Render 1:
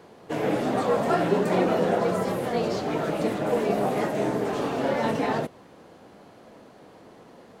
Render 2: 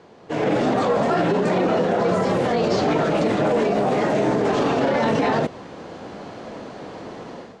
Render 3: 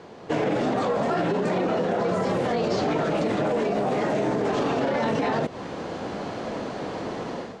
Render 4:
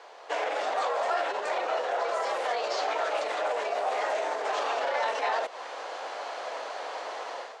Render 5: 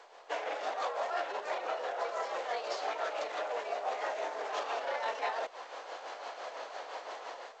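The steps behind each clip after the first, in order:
low-pass filter 7,200 Hz 24 dB per octave; automatic gain control gain up to 13 dB; brickwall limiter −13 dBFS, peak gain reduction 11.5 dB; level +1 dB
downward compressor 5 to 1, threshold −26 dBFS, peak gain reduction 9.5 dB; level +4 dB
high-pass filter 600 Hz 24 dB per octave
amplitude tremolo 5.9 Hz, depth 50%; level −4.5 dB; G.722 64 kbit/s 16,000 Hz

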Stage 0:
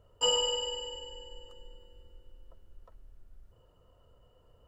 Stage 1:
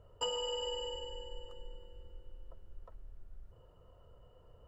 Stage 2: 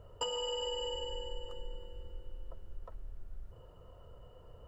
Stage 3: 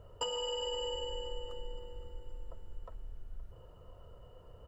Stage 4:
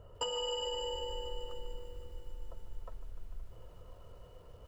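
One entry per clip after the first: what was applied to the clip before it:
high-shelf EQ 2,600 Hz −9 dB; downward compressor 10 to 1, threshold −36 dBFS, peak gain reduction 11 dB; parametric band 260 Hz −5 dB 0.4 octaves; level +3 dB
downward compressor 5 to 1, threshold −39 dBFS, peak gain reduction 7.5 dB; level +5.5 dB
repeating echo 520 ms, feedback 50%, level −18 dB
feedback echo at a low word length 149 ms, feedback 80%, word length 10 bits, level −14 dB

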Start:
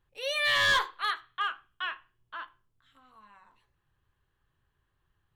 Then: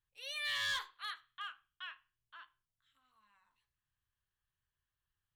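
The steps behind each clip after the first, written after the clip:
guitar amp tone stack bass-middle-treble 5-5-5
level −2 dB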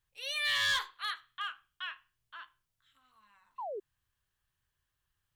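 sound drawn into the spectrogram fall, 0:03.58–0:03.80, 370–1,100 Hz −45 dBFS
level +6.5 dB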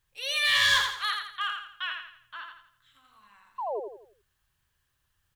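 repeating echo 84 ms, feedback 39%, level −5 dB
level +6.5 dB

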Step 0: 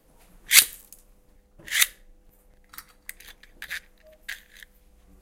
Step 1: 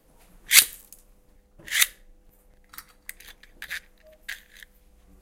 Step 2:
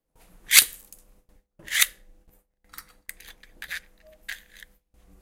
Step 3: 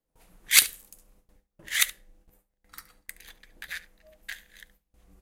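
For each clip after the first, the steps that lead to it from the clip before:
no processing that can be heard
noise gate with hold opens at −47 dBFS
single-tap delay 71 ms −19 dB; level −3 dB

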